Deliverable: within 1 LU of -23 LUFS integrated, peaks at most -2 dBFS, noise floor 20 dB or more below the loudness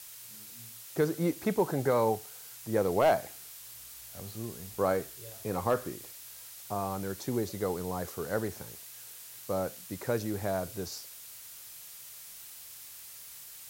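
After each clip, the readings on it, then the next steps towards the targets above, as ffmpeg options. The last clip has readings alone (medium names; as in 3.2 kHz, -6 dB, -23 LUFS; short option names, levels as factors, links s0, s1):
noise floor -48 dBFS; noise floor target -53 dBFS; loudness -32.5 LUFS; peak level -15.5 dBFS; loudness target -23.0 LUFS
-> -af "afftdn=nr=6:nf=-48"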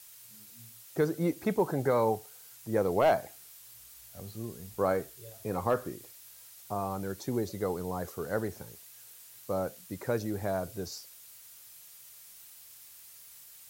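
noise floor -53 dBFS; loudness -32.5 LUFS; peak level -15.5 dBFS; loudness target -23.0 LUFS
-> -af "volume=2.99"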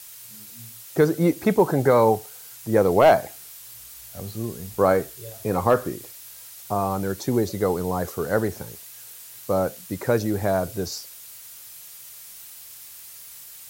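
loudness -22.5 LUFS; peak level -6.0 dBFS; noise floor -43 dBFS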